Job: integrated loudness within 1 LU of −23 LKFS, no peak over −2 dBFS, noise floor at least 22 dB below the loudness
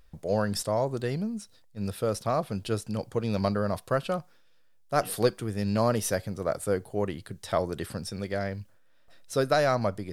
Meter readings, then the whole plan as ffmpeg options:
integrated loudness −29.5 LKFS; sample peak −9.0 dBFS; target loudness −23.0 LKFS
→ -af "volume=6.5dB"

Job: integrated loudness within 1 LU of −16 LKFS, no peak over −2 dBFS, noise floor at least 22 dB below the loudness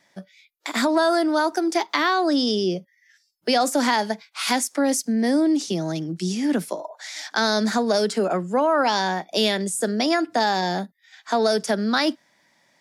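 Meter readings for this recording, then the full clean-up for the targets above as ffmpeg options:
integrated loudness −22.5 LKFS; sample peak −6.0 dBFS; target loudness −16.0 LKFS
→ -af "volume=6.5dB,alimiter=limit=-2dB:level=0:latency=1"

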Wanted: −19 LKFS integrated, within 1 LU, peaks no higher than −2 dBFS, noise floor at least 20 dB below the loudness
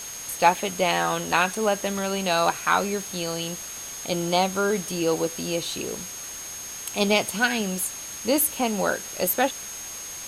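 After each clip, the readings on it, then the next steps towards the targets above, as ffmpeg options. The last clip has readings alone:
interfering tone 6,500 Hz; level of the tone −36 dBFS; background noise floor −37 dBFS; target noise floor −45 dBFS; integrated loudness −25.0 LKFS; sample peak −4.0 dBFS; target loudness −19.0 LKFS
→ -af "bandreject=frequency=6500:width=30"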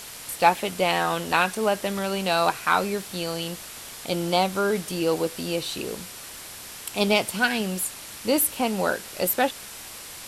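interfering tone none found; background noise floor −40 dBFS; target noise floor −45 dBFS
→ -af "afftdn=noise_reduction=6:noise_floor=-40"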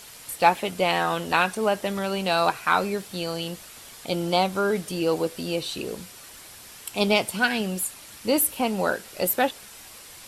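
background noise floor −45 dBFS; integrated loudness −25.0 LKFS; sample peak −4.0 dBFS; target loudness −19.0 LKFS
→ -af "volume=6dB,alimiter=limit=-2dB:level=0:latency=1"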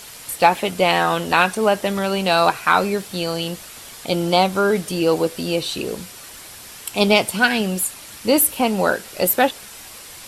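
integrated loudness −19.0 LKFS; sample peak −2.0 dBFS; background noise floor −39 dBFS

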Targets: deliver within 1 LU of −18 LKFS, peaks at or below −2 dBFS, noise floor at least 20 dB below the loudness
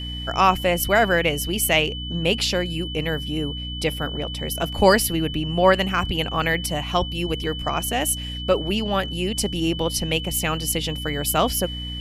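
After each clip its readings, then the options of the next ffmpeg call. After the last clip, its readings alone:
mains hum 60 Hz; hum harmonics up to 300 Hz; level of the hum −30 dBFS; interfering tone 3,000 Hz; level of the tone −32 dBFS; integrated loudness −22.0 LKFS; sample peak −2.5 dBFS; target loudness −18.0 LKFS
→ -af "bandreject=frequency=60:width_type=h:width=4,bandreject=frequency=120:width_type=h:width=4,bandreject=frequency=180:width_type=h:width=4,bandreject=frequency=240:width_type=h:width=4,bandreject=frequency=300:width_type=h:width=4"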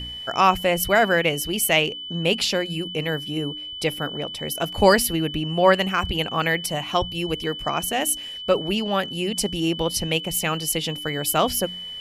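mains hum none found; interfering tone 3,000 Hz; level of the tone −32 dBFS
→ -af "bandreject=frequency=3000:width=30"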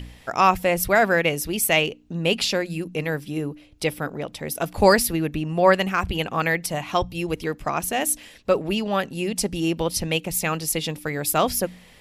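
interfering tone none found; integrated loudness −23.0 LKFS; sample peak −3.0 dBFS; target loudness −18.0 LKFS
→ -af "volume=5dB,alimiter=limit=-2dB:level=0:latency=1"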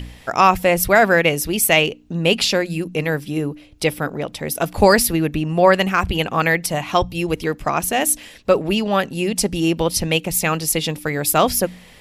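integrated loudness −18.5 LKFS; sample peak −2.0 dBFS; background noise floor −45 dBFS

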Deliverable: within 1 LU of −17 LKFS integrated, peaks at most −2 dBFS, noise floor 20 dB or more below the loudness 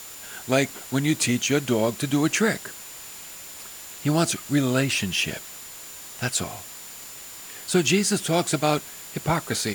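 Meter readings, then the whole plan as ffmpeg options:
interfering tone 7,100 Hz; level of the tone −44 dBFS; background noise floor −41 dBFS; target noise floor −44 dBFS; integrated loudness −24.0 LKFS; sample peak −7.5 dBFS; target loudness −17.0 LKFS
→ -af "bandreject=frequency=7100:width=30"
-af "afftdn=noise_reduction=6:noise_floor=-41"
-af "volume=7dB,alimiter=limit=-2dB:level=0:latency=1"

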